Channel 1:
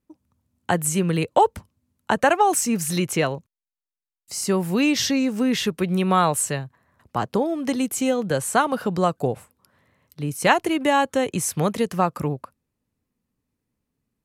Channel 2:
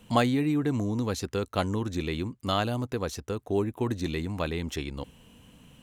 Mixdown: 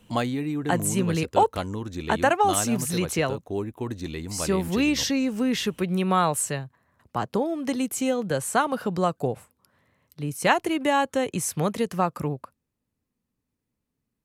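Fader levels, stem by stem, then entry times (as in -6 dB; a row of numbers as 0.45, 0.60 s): -3.0, -2.5 dB; 0.00, 0.00 s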